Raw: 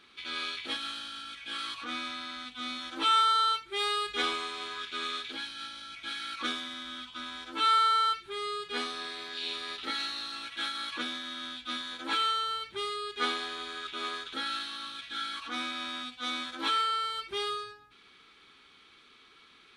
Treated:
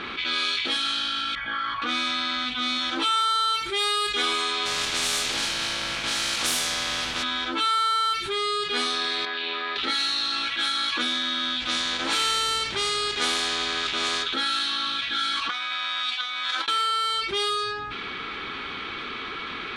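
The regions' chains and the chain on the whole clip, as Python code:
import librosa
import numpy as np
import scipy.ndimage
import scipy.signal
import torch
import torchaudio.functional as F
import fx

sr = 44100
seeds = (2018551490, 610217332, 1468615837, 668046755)

y = fx.chain(x, sr, fx.savgol(points=41),
    fx.peak_eq(hz=360.0, db=-11.0, octaves=1.3), at=(1.35, 1.82))
y = fx.spec_flatten(y, sr, power=0.3, at=(4.65, 7.22), fade=0.02)
y = fx.echo_single(y, sr, ms=77, db=-7.0, at=(4.65, 7.22), fade=0.02)
y = fx.chain(y, sr, fx.highpass(hz=750.0, slope=6),
    fx.spacing_loss(db_at_10k=31), at=(9.25, 9.76))
y = fx.spec_flatten(y, sr, power=0.6, at=(11.6, 14.22), fade=0.02)
y = fx.lowpass(y, sr, hz=8700.0, slope=12, at=(11.6, 14.22), fade=0.02)
y = fx.chain(y, sr, fx.highpass(hz=1000.0, slope=12),
    fx.over_compress(threshold_db=-42.0, ratio=-0.5), at=(15.49, 16.68))
y = fx.env_lowpass(y, sr, base_hz=2000.0, full_db=-28.0)
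y = fx.high_shelf(y, sr, hz=3900.0, db=8.0)
y = fx.env_flatten(y, sr, amount_pct=70)
y = F.gain(torch.from_numpy(y), -1.0).numpy()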